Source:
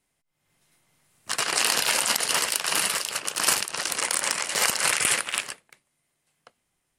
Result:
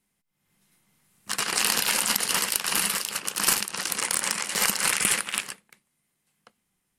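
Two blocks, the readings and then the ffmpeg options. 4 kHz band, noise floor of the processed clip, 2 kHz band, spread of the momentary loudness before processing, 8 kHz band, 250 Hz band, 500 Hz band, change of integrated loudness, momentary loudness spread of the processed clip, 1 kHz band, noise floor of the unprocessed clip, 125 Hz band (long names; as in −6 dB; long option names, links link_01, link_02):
−1.5 dB, −77 dBFS, −1.5 dB, 7 LU, −0.5 dB, +3.5 dB, −3.5 dB, −0.5 dB, 7 LU, −2.0 dB, −77 dBFS, +3.0 dB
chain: -af "equalizer=frequency=200:width_type=o:width=0.33:gain=12,equalizer=frequency=630:width_type=o:width=0.33:gain=-6,equalizer=frequency=12500:width_type=o:width=0.33:gain=7,aeval=exprs='0.891*(cos(1*acos(clip(val(0)/0.891,-1,1)))-cos(1*PI/2))+0.1*(cos(2*acos(clip(val(0)/0.891,-1,1)))-cos(2*PI/2))+0.01*(cos(7*acos(clip(val(0)/0.891,-1,1)))-cos(7*PI/2))':channel_layout=same,volume=-1dB"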